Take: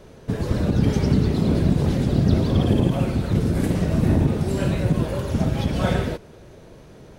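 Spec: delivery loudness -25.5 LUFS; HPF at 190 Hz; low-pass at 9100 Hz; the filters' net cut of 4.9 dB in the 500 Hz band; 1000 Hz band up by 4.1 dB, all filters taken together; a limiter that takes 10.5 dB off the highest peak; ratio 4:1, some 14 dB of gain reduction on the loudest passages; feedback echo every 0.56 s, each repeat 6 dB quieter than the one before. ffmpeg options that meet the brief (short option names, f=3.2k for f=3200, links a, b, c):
-af "highpass=190,lowpass=9.1k,equalizer=f=500:t=o:g=-8.5,equalizer=f=1k:t=o:g=8.5,acompressor=threshold=-37dB:ratio=4,alimiter=level_in=11dB:limit=-24dB:level=0:latency=1,volume=-11dB,aecho=1:1:560|1120|1680|2240|2800|3360:0.501|0.251|0.125|0.0626|0.0313|0.0157,volume=17.5dB"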